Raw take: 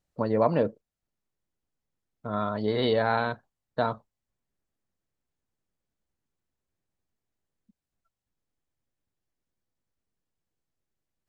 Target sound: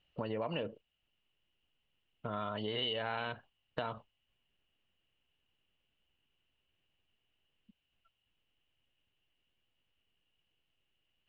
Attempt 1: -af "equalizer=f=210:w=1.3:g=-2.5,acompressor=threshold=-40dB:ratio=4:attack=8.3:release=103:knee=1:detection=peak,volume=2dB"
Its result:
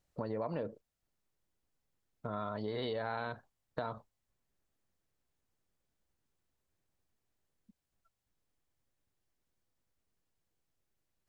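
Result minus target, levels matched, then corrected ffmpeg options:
4000 Hz band -10.0 dB
-af "lowpass=f=2.9k:t=q:w=15,equalizer=f=210:w=1.3:g=-2.5,acompressor=threshold=-40dB:ratio=4:attack=8.3:release=103:knee=1:detection=peak,volume=2dB"

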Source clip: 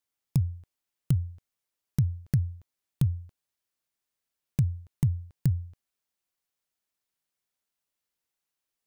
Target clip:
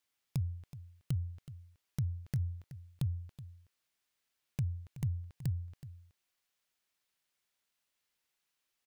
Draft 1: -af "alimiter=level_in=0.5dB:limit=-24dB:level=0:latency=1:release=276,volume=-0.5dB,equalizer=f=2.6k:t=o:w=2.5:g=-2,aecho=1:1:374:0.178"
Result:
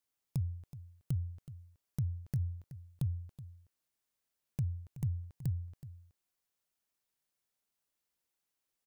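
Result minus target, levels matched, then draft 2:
2000 Hz band -7.0 dB
-af "alimiter=level_in=0.5dB:limit=-24dB:level=0:latency=1:release=276,volume=-0.5dB,equalizer=f=2.6k:t=o:w=2.5:g=6,aecho=1:1:374:0.178"

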